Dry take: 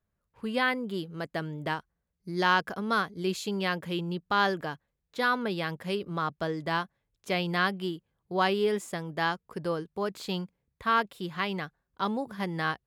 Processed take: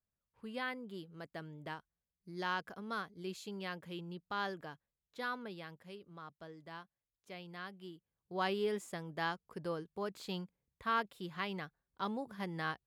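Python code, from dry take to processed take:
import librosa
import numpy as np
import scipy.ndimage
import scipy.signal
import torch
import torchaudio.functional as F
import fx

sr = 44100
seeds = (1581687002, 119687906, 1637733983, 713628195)

y = fx.gain(x, sr, db=fx.line((5.29, -13.0), (5.98, -20.0), (7.65, -20.0), (8.51, -8.5)))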